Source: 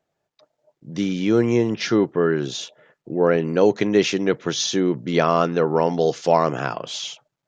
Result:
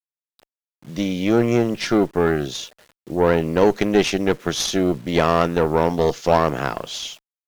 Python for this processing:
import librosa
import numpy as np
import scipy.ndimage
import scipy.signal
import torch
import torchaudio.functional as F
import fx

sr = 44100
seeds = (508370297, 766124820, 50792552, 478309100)

y = fx.quant_dither(x, sr, seeds[0], bits=8, dither='none')
y = fx.cheby_harmonics(y, sr, harmonics=(4, 8), levels_db=(-22, -25), full_scale_db=-3.0)